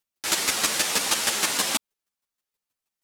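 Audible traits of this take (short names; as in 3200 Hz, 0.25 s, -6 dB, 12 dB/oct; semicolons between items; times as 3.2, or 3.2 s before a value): chopped level 6.3 Hz, depth 65%, duty 10%; a shimmering, thickened sound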